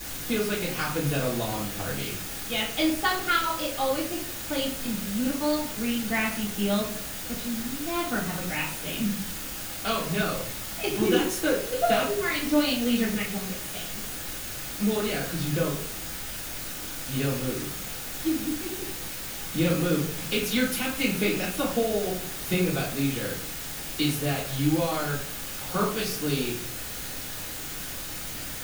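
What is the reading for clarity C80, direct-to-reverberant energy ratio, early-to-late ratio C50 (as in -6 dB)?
10.0 dB, -8.0 dB, 5.5 dB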